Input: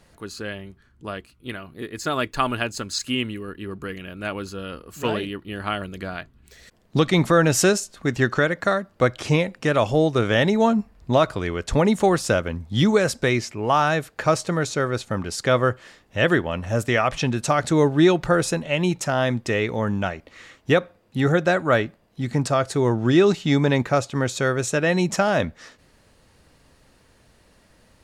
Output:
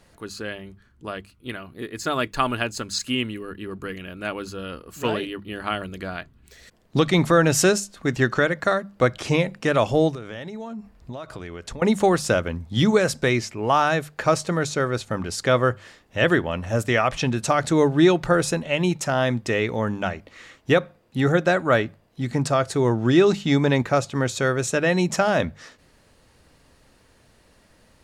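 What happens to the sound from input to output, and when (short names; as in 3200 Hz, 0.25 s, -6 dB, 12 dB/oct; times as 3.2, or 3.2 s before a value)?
10.11–11.82 compressor 20:1, threshold -30 dBFS
whole clip: notches 50/100/150/200 Hz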